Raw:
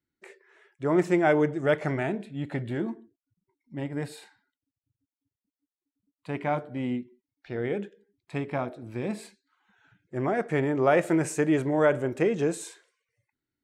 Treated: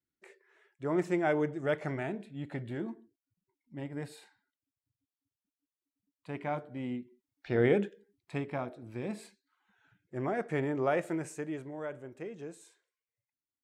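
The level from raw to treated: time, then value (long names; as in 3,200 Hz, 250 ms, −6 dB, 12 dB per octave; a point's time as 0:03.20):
0:06.97 −7 dB
0:07.62 +5 dB
0:08.56 −6 dB
0:10.74 −6 dB
0:11.81 −17.5 dB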